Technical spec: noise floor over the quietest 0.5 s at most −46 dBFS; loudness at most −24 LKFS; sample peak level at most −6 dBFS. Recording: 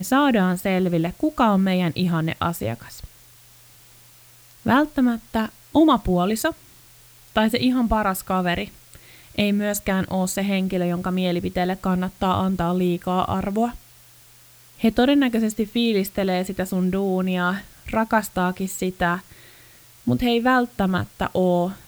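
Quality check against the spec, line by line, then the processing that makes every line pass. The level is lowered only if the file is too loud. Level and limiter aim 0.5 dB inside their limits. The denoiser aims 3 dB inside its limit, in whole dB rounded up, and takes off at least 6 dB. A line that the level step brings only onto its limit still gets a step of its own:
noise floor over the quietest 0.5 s −50 dBFS: in spec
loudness −22.0 LKFS: out of spec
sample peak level −5.5 dBFS: out of spec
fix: level −2.5 dB

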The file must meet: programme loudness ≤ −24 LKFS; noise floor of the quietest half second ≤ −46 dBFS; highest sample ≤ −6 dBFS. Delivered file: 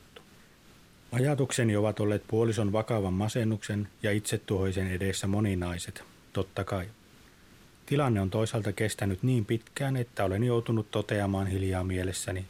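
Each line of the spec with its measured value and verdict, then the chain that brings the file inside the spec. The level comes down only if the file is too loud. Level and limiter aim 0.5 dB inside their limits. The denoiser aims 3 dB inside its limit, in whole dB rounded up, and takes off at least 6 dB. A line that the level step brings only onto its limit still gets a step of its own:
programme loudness −30.0 LKFS: in spec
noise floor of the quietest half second −56 dBFS: in spec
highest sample −13.0 dBFS: in spec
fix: no processing needed

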